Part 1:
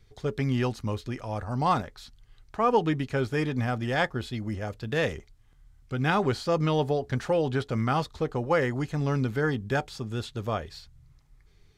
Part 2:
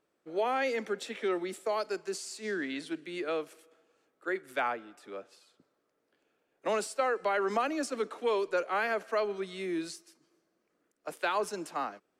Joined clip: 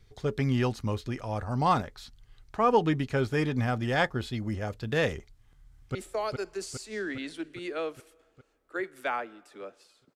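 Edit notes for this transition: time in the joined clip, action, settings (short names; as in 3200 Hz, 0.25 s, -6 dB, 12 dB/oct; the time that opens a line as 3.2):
part 1
5.3–5.95 echo throw 0.41 s, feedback 65%, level -4 dB
5.95 switch to part 2 from 1.47 s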